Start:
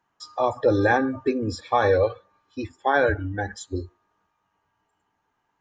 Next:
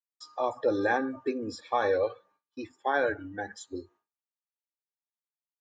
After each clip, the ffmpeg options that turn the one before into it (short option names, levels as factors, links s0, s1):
-af "highpass=200,agate=range=0.0224:threshold=0.00316:ratio=3:detection=peak,volume=0.473"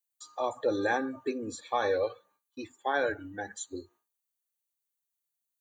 -filter_complex "[0:a]acrossover=split=1900[s0][s1];[s1]crystalizer=i=2.5:c=0[s2];[s0][s2]amix=inputs=2:normalize=0,asuperstop=centerf=5200:order=8:qfactor=5.9,volume=0.794"